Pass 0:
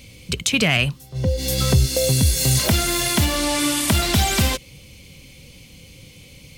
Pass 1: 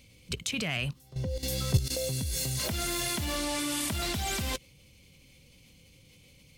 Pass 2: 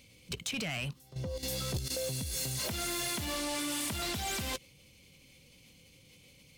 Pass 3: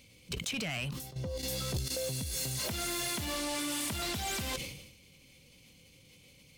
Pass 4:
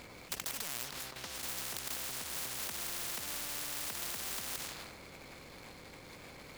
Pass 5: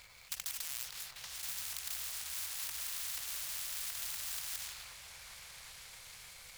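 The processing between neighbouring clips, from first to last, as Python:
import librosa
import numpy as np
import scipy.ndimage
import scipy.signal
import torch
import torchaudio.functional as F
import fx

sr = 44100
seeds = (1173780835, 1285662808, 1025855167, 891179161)

y1 = fx.level_steps(x, sr, step_db=13)
y1 = F.gain(torch.from_numpy(y1), -5.5).numpy()
y2 = fx.low_shelf(y1, sr, hz=110.0, db=-8.0)
y2 = 10.0 ** (-29.5 / 20.0) * np.tanh(y2 / 10.0 ** (-29.5 / 20.0))
y3 = fx.sustainer(y2, sr, db_per_s=59.0)
y4 = scipy.ndimage.median_filter(y3, 15, mode='constant')
y4 = fx.spectral_comp(y4, sr, ratio=10.0)
y4 = F.gain(torch.from_numpy(y4), 8.5).numpy()
y5 = fx.tone_stack(y4, sr, knobs='10-0-10')
y5 = fx.echo_opening(y5, sr, ms=388, hz=750, octaves=1, feedback_pct=70, wet_db=-3)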